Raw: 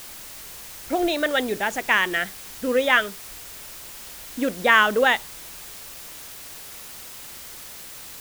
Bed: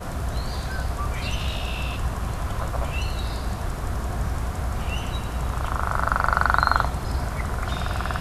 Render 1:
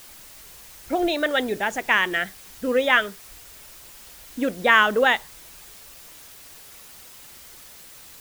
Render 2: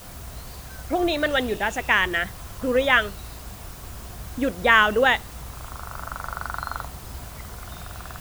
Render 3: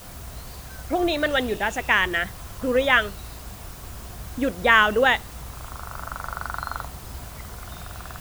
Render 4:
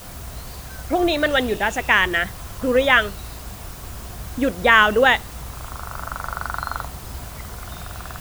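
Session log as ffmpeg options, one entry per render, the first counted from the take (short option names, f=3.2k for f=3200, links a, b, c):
-af "afftdn=nr=6:nf=-40"
-filter_complex "[1:a]volume=-11.5dB[a];[0:a][a]amix=inputs=2:normalize=0"
-af anull
-af "volume=3.5dB,alimiter=limit=-1dB:level=0:latency=1"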